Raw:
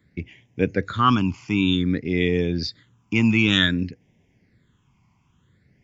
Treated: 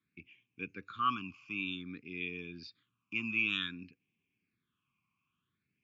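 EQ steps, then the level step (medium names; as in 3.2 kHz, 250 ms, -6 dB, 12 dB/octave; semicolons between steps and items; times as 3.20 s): vowel filter a; Butterworth band-stop 650 Hz, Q 0.59; +3.0 dB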